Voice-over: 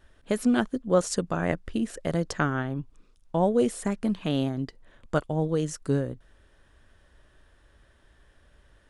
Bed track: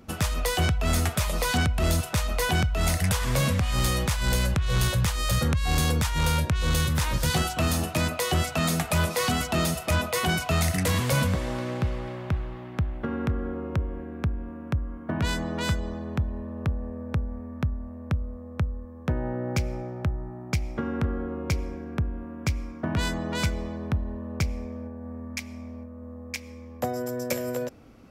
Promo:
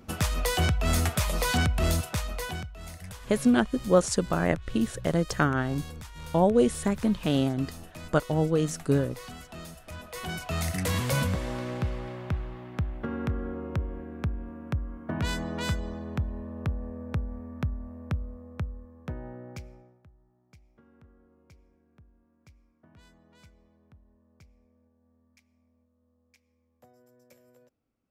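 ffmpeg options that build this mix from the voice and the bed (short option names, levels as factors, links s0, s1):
-filter_complex "[0:a]adelay=3000,volume=1.19[s0];[1:a]volume=5.01,afade=t=out:st=1.8:d=0.93:silence=0.141254,afade=t=in:st=9.97:d=1.01:silence=0.177828,afade=t=out:st=17.99:d=2.02:silence=0.0446684[s1];[s0][s1]amix=inputs=2:normalize=0"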